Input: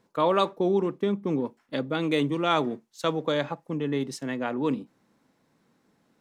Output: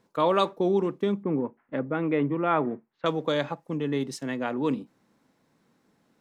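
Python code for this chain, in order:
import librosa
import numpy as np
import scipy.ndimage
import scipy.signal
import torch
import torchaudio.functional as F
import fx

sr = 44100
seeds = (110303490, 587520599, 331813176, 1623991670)

y = fx.lowpass(x, sr, hz=2100.0, slope=24, at=(1.23, 3.06))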